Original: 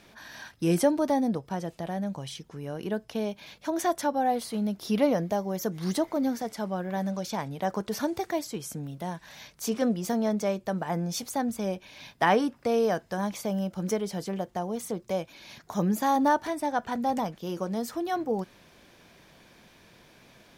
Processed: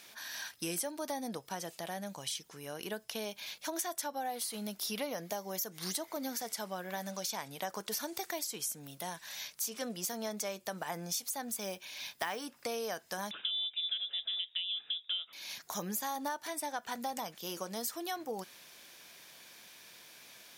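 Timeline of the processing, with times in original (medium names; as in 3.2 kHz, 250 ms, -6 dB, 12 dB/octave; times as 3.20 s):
11.50–12.46 s: block-companded coder 7-bit
13.31–15.33 s: frequency inversion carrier 3.7 kHz
whole clip: tilt EQ +4 dB/octave; compression 6:1, threshold -31 dBFS; trim -3 dB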